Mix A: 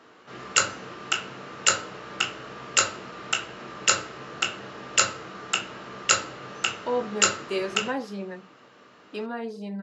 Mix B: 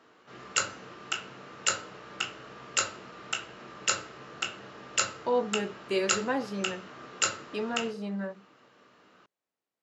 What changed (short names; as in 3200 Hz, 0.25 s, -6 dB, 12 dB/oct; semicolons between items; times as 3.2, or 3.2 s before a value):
speech: entry -1.60 s; background -6.5 dB